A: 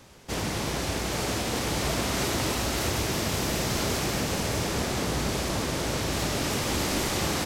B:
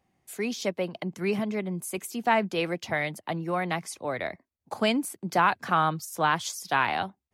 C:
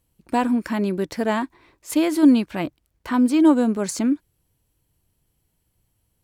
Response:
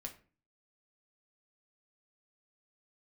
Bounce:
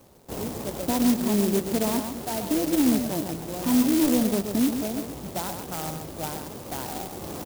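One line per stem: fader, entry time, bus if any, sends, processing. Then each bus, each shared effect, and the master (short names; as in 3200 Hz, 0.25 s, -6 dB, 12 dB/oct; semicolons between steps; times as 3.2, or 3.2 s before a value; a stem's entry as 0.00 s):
+2.5 dB, 0.00 s, no send, no echo send, low shelf 160 Hz -7.5 dB; auto duck -9 dB, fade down 1.45 s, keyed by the second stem
-5.0 dB, 0.00 s, no send, echo send -7 dB, bell 1100 Hz -10.5 dB 0.33 oct
-1.5 dB, 0.55 s, send -9.5 dB, echo send -5.5 dB, soft clip -10 dBFS, distortion -17 dB; limiter -17.5 dBFS, peak gain reduction 7 dB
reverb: on, RT60 0.40 s, pre-delay 4 ms
echo: echo 0.132 s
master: LPF 1100 Hz 12 dB/oct; clock jitter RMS 0.14 ms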